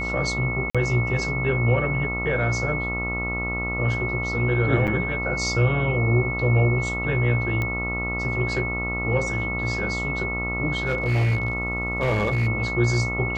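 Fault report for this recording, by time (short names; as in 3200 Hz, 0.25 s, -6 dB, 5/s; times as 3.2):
buzz 60 Hz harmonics 23 -30 dBFS
tone 2200 Hz -27 dBFS
0.7–0.75 gap 46 ms
4.87–4.88 gap 7.7 ms
7.62 pop -14 dBFS
10.77–12.48 clipped -17.5 dBFS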